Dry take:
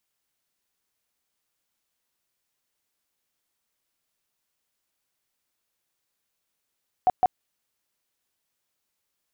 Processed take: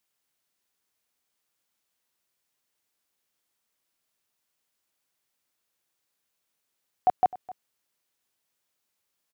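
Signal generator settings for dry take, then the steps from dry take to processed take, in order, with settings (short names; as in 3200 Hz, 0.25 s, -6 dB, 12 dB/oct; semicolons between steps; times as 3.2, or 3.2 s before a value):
tone bursts 739 Hz, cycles 21, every 0.16 s, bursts 2, -14.5 dBFS
low shelf 70 Hz -8 dB; echo 0.258 s -19 dB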